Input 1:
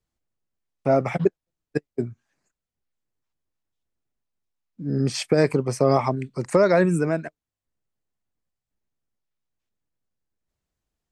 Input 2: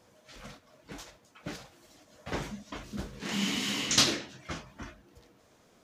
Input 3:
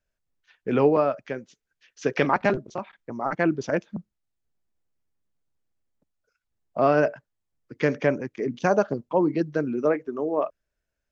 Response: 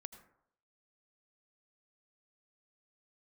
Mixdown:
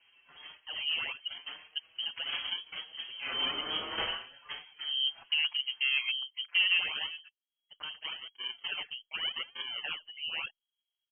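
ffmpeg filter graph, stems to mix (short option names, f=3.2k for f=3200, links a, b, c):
-filter_complex "[0:a]lowpass=1.4k,volume=-7dB[a];[1:a]volume=0dB[b];[2:a]alimiter=limit=-15dB:level=0:latency=1:release=34,acrusher=samples=38:mix=1:aa=0.000001:lfo=1:lforange=60.8:lforate=0.86,highshelf=f=4.3k:g=6.5,volume=-9.5dB,asplit=2[c][d];[d]apad=whole_len=490040[e];[a][e]sidechaincompress=threshold=-41dB:ratio=8:attack=16:release=866[f];[f][b][c]amix=inputs=3:normalize=0,volume=19dB,asoftclip=hard,volume=-19dB,lowpass=f=2.8k:t=q:w=0.5098,lowpass=f=2.8k:t=q:w=0.6013,lowpass=f=2.8k:t=q:w=0.9,lowpass=f=2.8k:t=q:w=2.563,afreqshift=-3300,asplit=2[g][h];[h]adelay=5.6,afreqshift=0.96[i];[g][i]amix=inputs=2:normalize=1"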